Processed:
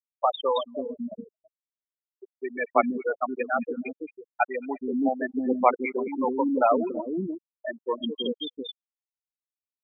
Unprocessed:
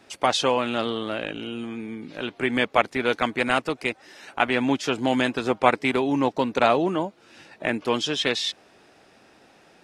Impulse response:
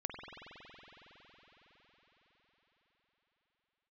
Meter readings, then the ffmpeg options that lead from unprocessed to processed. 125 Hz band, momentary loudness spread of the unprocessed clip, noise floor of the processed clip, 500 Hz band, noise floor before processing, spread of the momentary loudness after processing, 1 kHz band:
under -10 dB, 12 LU, under -85 dBFS, -2.5 dB, -56 dBFS, 14 LU, -2.0 dB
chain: -filter_complex "[0:a]asplit=2[s0][s1];[1:a]atrim=start_sample=2205[s2];[s1][s2]afir=irnorm=-1:irlink=0,volume=0.106[s3];[s0][s3]amix=inputs=2:normalize=0,afftfilt=real='re*gte(hypot(re,im),0.355)':imag='im*gte(hypot(re,im),0.355)':win_size=1024:overlap=0.75,acrossover=split=360|3500[s4][s5][s6];[s6]adelay=220[s7];[s4]adelay=330[s8];[s8][s5][s7]amix=inputs=3:normalize=0"

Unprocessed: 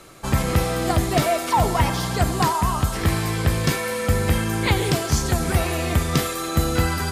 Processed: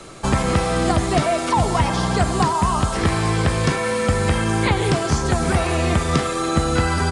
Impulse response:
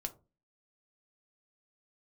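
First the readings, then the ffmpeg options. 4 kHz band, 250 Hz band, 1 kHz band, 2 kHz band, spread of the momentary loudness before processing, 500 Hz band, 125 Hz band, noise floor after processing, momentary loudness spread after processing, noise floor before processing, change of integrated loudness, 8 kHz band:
+0.5 dB, +3.0 dB, +3.0 dB, +2.5 dB, 2 LU, +3.0 dB, +1.0 dB, -24 dBFS, 2 LU, -28 dBFS, +2.0 dB, 0.0 dB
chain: -filter_complex "[0:a]asplit=2[s0][s1];[1:a]atrim=start_sample=2205,lowpass=f=2100:w=0.5412,lowpass=f=2100:w=1.3066[s2];[s1][s2]afir=irnorm=-1:irlink=0,volume=0.282[s3];[s0][s3]amix=inputs=2:normalize=0,acrossover=split=360|810|2100[s4][s5][s6][s7];[s4]acompressor=threshold=0.0631:ratio=4[s8];[s5]acompressor=threshold=0.0224:ratio=4[s9];[s6]acompressor=threshold=0.0398:ratio=4[s10];[s7]acompressor=threshold=0.0158:ratio=4[s11];[s8][s9][s10][s11]amix=inputs=4:normalize=0,aresample=22050,aresample=44100,volume=2"

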